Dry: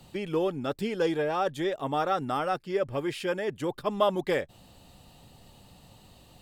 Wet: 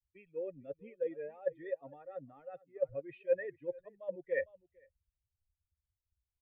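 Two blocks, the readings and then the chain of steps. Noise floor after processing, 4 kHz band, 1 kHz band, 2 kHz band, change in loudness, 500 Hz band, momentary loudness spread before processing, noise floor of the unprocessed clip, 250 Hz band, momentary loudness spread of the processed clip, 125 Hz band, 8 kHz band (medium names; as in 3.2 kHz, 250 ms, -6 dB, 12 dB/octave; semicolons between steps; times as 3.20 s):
under -85 dBFS, under -35 dB, -27.5 dB, -10.5 dB, -10.5 dB, -8.5 dB, 5 LU, -56 dBFS, -20.0 dB, 13 LU, -21.0 dB, under -30 dB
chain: expander on every frequency bin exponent 2; reverse; compression 16:1, threshold -37 dBFS, peak gain reduction 18 dB; reverse; cascade formant filter e; echo from a far wall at 78 m, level -19 dB; three bands expanded up and down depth 70%; trim +9 dB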